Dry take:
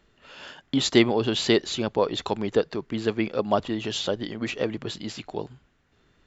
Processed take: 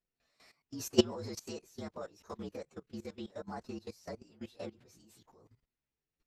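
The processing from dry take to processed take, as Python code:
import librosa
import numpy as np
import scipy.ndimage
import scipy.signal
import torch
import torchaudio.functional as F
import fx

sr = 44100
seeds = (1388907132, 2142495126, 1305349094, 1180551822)

y = fx.partial_stretch(x, sr, pct=117)
y = fx.level_steps(y, sr, step_db=16)
y = fx.upward_expand(y, sr, threshold_db=-42.0, expansion=1.5)
y = y * librosa.db_to_amplitude(-1.5)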